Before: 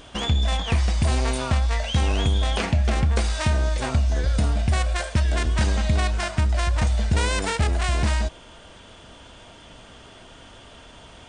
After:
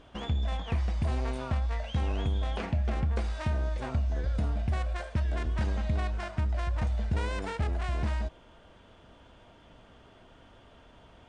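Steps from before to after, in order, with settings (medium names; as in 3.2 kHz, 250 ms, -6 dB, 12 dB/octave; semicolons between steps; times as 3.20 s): low-pass 1.6 kHz 6 dB/octave; trim -8 dB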